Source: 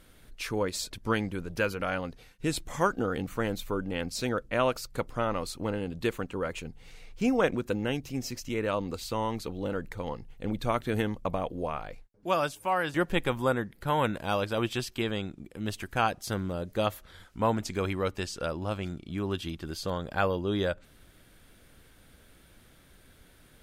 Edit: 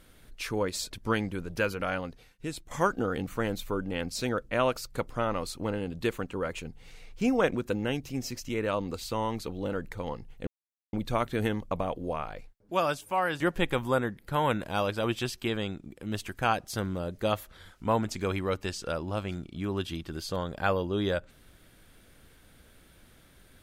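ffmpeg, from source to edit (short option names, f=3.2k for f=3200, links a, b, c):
-filter_complex "[0:a]asplit=3[a][b][c];[a]atrim=end=2.71,asetpts=PTS-STARTPTS,afade=t=out:st=1.91:d=0.8:silence=0.281838[d];[b]atrim=start=2.71:end=10.47,asetpts=PTS-STARTPTS,afade=t=in:d=0.004:c=hsin:silence=0.281838,afade=t=out:st=7.756:d=0.004:c=hsin,apad=pad_dur=0.46[e];[c]atrim=start=10.47,asetpts=PTS-STARTPTS,afade=t=in:d=0.004:c=hsin[f];[d][e][f]concat=n=3:v=0:a=1"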